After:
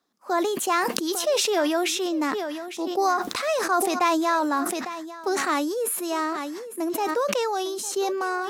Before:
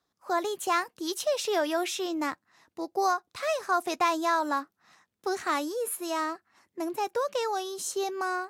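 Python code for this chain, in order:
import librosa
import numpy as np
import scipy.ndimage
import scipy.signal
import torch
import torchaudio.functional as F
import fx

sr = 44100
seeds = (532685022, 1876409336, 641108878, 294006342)

y = fx.low_shelf_res(x, sr, hz=170.0, db=-8.5, q=3.0)
y = y + 10.0 ** (-18.0 / 20.0) * np.pad(y, (int(853 * sr / 1000.0), 0))[:len(y)]
y = fx.sustainer(y, sr, db_per_s=27.0)
y = F.gain(torch.from_numpy(y), 2.5).numpy()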